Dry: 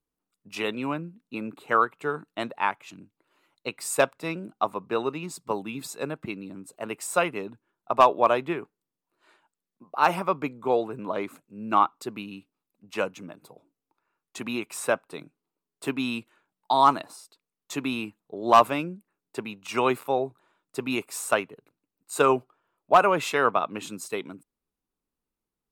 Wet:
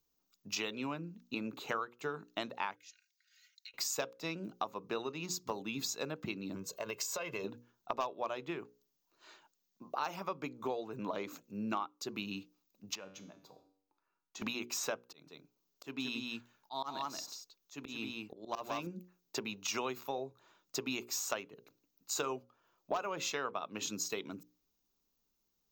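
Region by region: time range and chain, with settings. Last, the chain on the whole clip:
0:02.76–0:03.74: Chebyshev high-pass with heavy ripple 1,400 Hz, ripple 6 dB + comb filter 3.2 ms, depth 82% + downward compressor, threshold −55 dBFS
0:06.55–0:07.44: comb filter 1.9 ms, depth 68% + downward compressor 4 to 1, threshold −35 dBFS
0:12.95–0:14.42: high-shelf EQ 3,800 Hz −9.5 dB + downward compressor 2.5 to 1, threshold −44 dBFS + tuned comb filter 96 Hz, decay 0.58 s, mix 70%
0:15.06–0:18.87: single-tap delay 178 ms −9.5 dB + volume swells 539 ms
whole clip: drawn EQ curve 2,100 Hz 0 dB, 6,600 Hz +13 dB, 10,000 Hz −23 dB, 15,000 Hz +14 dB; downward compressor 6 to 1, threshold −36 dBFS; mains-hum notches 60/120/180/240/300/360/420/480/540 Hz; level +1 dB

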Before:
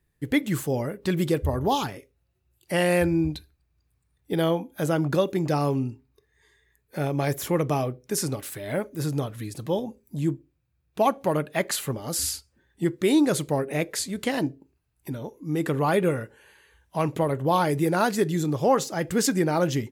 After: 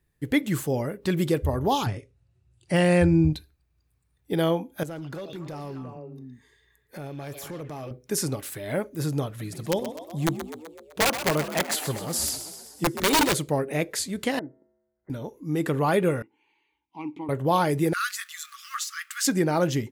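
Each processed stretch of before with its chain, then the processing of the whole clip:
0:01.86–0:03.33: Butterworth low-pass 10,000 Hz 72 dB per octave + parametric band 110 Hz +13 dB 1.2 octaves + de-essing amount 60%
0:04.83–0:07.91: echo through a band-pass that steps 115 ms, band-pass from 3,500 Hz, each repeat −1.4 octaves, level −3 dB + downward compressor 2.5 to 1, threshold −38 dBFS + hard clipping −31 dBFS
0:09.27–0:13.34: parametric band 250 Hz −6.5 dB 0.21 octaves + wrap-around overflow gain 15.5 dB + echo with shifted repeats 127 ms, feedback 60%, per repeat +53 Hz, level −10.5 dB
0:14.39–0:15.10: gap after every zero crossing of 0.09 ms + Chebyshev low-pass with heavy ripple 2,100 Hz, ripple 9 dB + tuned comb filter 72 Hz, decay 1.4 s, harmonics odd, mix 50%
0:16.22–0:17.29: formant filter u + parametric band 4,300 Hz +9 dB 2 octaves
0:17.93–0:19.27: mu-law and A-law mismatch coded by mu + linear-phase brick-wall high-pass 1,100 Hz
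whole clip: no processing

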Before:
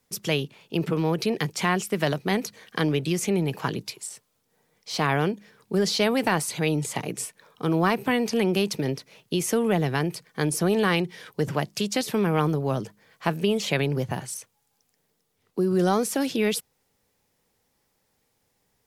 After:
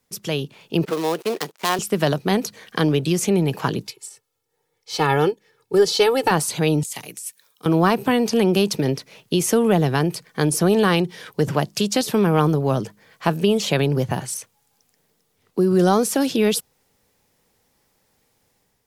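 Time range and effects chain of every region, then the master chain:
0:00.85–0:01.79: gap after every zero crossing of 0.15 ms + noise gate −37 dBFS, range −13 dB + high-pass filter 390 Hz
0:03.87–0:06.31: comb filter 2.3 ms, depth 88% + expander for the loud parts, over −42 dBFS
0:06.83–0:07.66: first-order pre-emphasis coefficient 0.9 + compressor whose output falls as the input rises −37 dBFS + multiband upward and downward expander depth 40%
whole clip: dynamic equaliser 2,100 Hz, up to −7 dB, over −44 dBFS, Q 2.6; automatic gain control gain up to 6 dB

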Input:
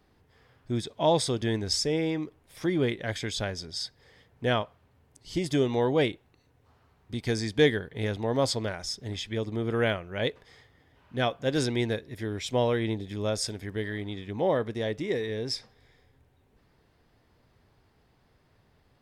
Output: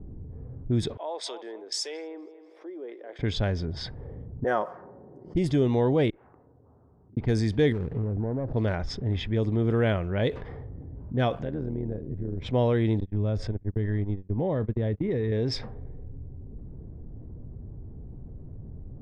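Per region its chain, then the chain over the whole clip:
0:00.97–0:03.19: inverse Chebyshev high-pass filter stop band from 170 Hz + first difference + feedback echo with a high-pass in the loop 241 ms, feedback 52%, high-pass 630 Hz, level −14 dB
0:04.44–0:05.35: high-pass filter 420 Hz + flat-topped bell 3,100 Hz −15.5 dB 1.1 octaves + comb filter 5.5 ms, depth 43%
0:06.10–0:07.17: low-pass filter 1,400 Hz 24 dB per octave + downward compressor 4 to 1, threshold −56 dBFS + first difference
0:07.72–0:08.54: running median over 41 samples + high-shelf EQ 3,800 Hz −8 dB + downward compressor 16 to 1, threshold −34 dBFS
0:11.35–0:12.42: downward compressor 3 to 1, threshold −40 dBFS + amplitude modulation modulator 81 Hz, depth 60%
0:13.00–0:15.32: noise gate −35 dBFS, range −50 dB + low-shelf EQ 180 Hz +10 dB + downward compressor 3 to 1, threshold −32 dBFS
whole clip: low-pass that shuts in the quiet parts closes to 320 Hz, open at −25.5 dBFS; spectral tilt −2.5 dB per octave; envelope flattener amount 50%; level −5 dB

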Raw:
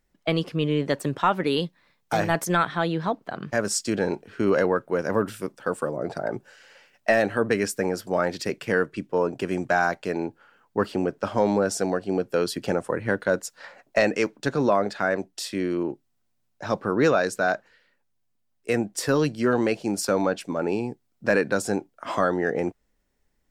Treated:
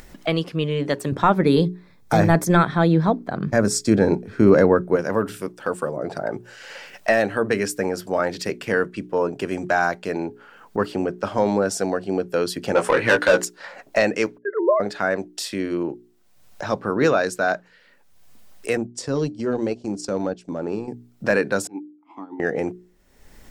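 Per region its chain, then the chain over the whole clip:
0:01.12–0:04.96: low-shelf EQ 400 Hz +11.5 dB + notch filter 2,900 Hz, Q 5.2
0:12.75–0:13.45: mid-hump overdrive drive 20 dB, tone 6,100 Hz, clips at −9 dBFS + double-tracking delay 17 ms −5 dB
0:14.38–0:14.80: three sine waves on the formant tracks + linear-phase brick-wall low-pass 2,100 Hz + noise gate −42 dBFS, range −24 dB
0:18.77–0:20.88: low-pass filter 7,700 Hz 24 dB per octave + parametric band 1,800 Hz −10.5 dB 2.4 octaves + transient designer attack −3 dB, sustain −9 dB
0:21.67–0:22.40: formant filter u + expander for the loud parts 2.5 to 1, over −45 dBFS
whole clip: mains-hum notches 60/120/180/240/300/360/420 Hz; upward compression, threshold −27 dBFS; level +2 dB

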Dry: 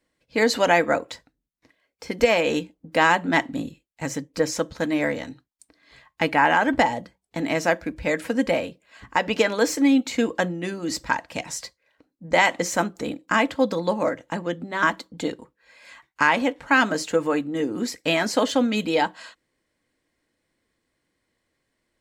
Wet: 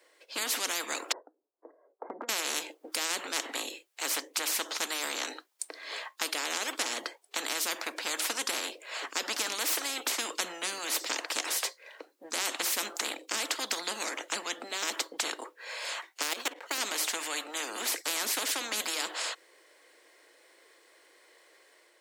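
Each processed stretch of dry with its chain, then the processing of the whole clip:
0:01.12–0:02.29: Gaussian smoothing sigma 10 samples + downward compressor 4 to 1, threshold −29 dBFS
0:16.22–0:16.78: running median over 5 samples + output level in coarse steps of 20 dB
whole clip: Butterworth high-pass 360 Hz 48 dB per octave; automatic gain control gain up to 4 dB; every bin compressed towards the loudest bin 10 to 1; level −7 dB

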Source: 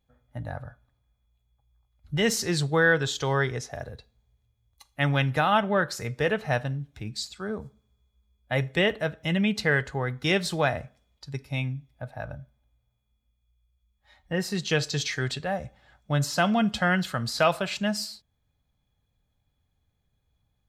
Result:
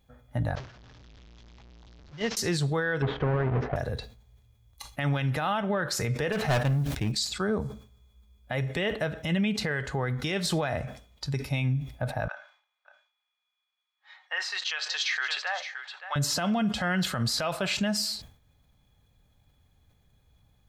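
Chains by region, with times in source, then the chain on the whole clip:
0:00.55–0:02.37: linear delta modulator 32 kbit/s, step −28.5 dBFS + noise gate −21 dBFS, range −26 dB
0:03.02–0:03.76: each half-wave held at its own peak + Bessel low-pass filter 1,300 Hz, order 4
0:06.32–0:07.12: mu-law and A-law mismatch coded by A + hard clipping −29 dBFS + level that may fall only so fast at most 50 dB per second
0:12.28–0:16.16: high-pass filter 970 Hz 24 dB per octave + high-frequency loss of the air 160 metres + single-tap delay 569 ms −13.5 dB
whole clip: downward compressor 6 to 1, threshold −30 dBFS; brickwall limiter −28.5 dBFS; level that may fall only so fast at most 120 dB per second; level +9 dB

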